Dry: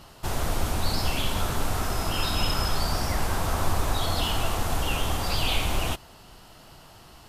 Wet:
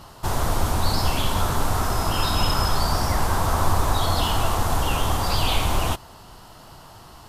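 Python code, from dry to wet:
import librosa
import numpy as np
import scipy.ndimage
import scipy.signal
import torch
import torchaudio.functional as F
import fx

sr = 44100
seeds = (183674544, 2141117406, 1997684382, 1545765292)

y = fx.graphic_eq_15(x, sr, hz=(100, 1000, 2500), db=(3, 5, -4))
y = y * 10.0 ** (3.5 / 20.0)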